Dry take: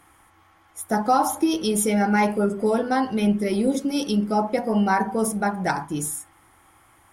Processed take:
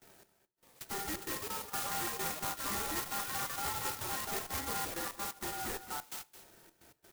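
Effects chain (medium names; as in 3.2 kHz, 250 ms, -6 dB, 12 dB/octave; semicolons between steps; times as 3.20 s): every band turned upside down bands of 500 Hz; high-pass 91 Hz 6 dB/octave; gate with hold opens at -46 dBFS; in parallel at +2 dB: compression, threshold -38 dBFS, peak gain reduction 21 dB; on the sum: trance gate "xx.x.x.x" 130 bpm -24 dB; ring modulator 1.1 kHz; hard clipper -28 dBFS, distortion -5 dB; ever faster or slower copies 614 ms, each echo +5 st, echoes 3; delay 217 ms -12.5 dB; on a send at -17 dB: reverberation RT60 0.45 s, pre-delay 3 ms; on the sum: sampling jitter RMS 0.11 ms; trim -7.5 dB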